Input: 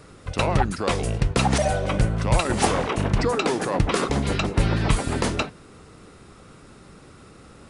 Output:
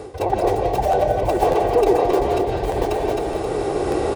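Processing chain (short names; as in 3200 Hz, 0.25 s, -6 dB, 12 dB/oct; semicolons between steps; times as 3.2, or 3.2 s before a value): tracing distortion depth 0.22 ms; recorder AGC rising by 9.8 dB/s; low shelf 98 Hz +5.5 dB; feedback echo 0.488 s, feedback 31%, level -9.5 dB; reverse; compressor 5:1, threshold -32 dBFS, peak gain reduction 19 dB; reverse; time stretch by phase-locked vocoder 0.54×; HPF 57 Hz; band shelf 560 Hz +13 dB; notch 1300 Hz, Q 9.6; comb 2.6 ms, depth 37%; reverb RT60 0.35 s, pre-delay 0.12 s, DRR 1 dB; crackling interface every 0.60 s, samples 512, repeat, from 0.91; gain +7 dB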